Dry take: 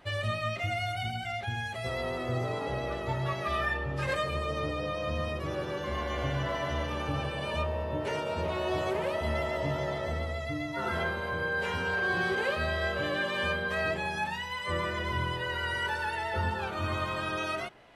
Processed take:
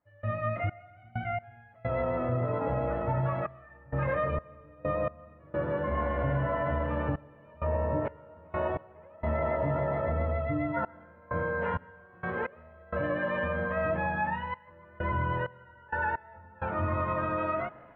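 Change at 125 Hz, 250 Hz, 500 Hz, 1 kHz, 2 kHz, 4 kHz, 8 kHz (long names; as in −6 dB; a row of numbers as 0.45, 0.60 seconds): +1.5 dB, +1.5 dB, +1.0 dB, +0.5 dB, −5.0 dB, below −15 dB, below −30 dB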